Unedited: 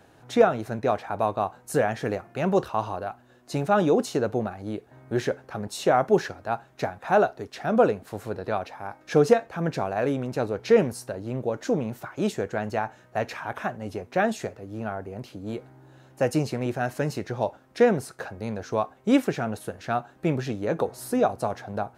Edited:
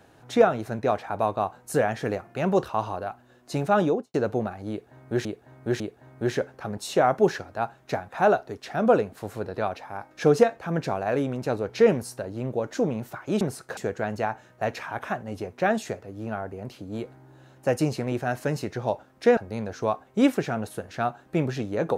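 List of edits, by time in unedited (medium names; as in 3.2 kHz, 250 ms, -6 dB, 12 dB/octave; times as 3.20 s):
3.79–4.14 s: studio fade out
4.70–5.25 s: loop, 3 plays
17.91–18.27 s: move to 12.31 s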